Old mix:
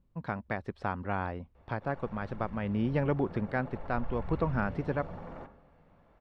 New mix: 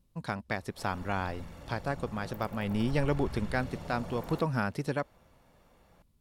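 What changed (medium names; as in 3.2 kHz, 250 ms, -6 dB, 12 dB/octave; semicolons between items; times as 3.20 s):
background: entry -1.05 s; master: remove low-pass 2 kHz 12 dB/octave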